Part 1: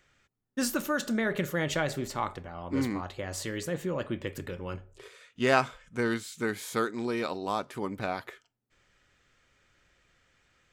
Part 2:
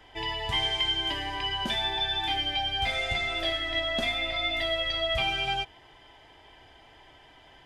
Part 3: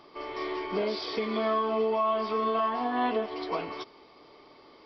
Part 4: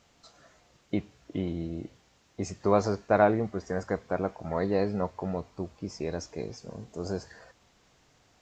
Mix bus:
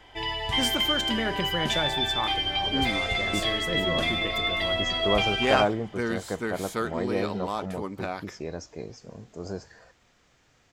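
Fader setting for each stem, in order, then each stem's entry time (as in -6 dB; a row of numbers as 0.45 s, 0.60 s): -0.5 dB, +1.5 dB, -12.5 dB, -2.0 dB; 0.00 s, 0.00 s, 1.90 s, 2.40 s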